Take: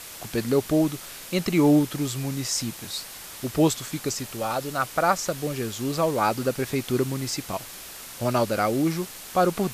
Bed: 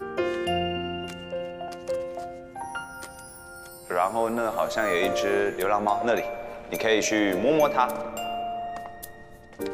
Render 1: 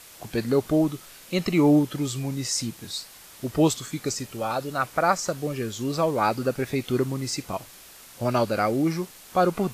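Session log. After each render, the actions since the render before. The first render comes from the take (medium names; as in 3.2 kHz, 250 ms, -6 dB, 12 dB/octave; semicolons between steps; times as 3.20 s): noise print and reduce 7 dB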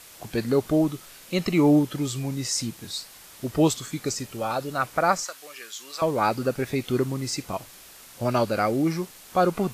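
5.24–6.02 s: high-pass 1.2 kHz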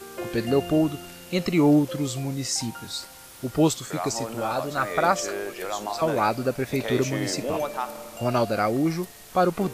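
add bed -7.5 dB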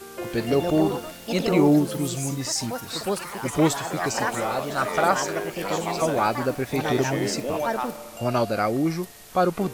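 ever faster or slower copies 226 ms, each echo +4 st, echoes 3, each echo -6 dB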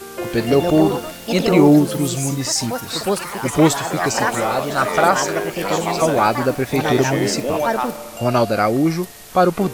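trim +6.5 dB; peak limiter -2 dBFS, peak gain reduction 2.5 dB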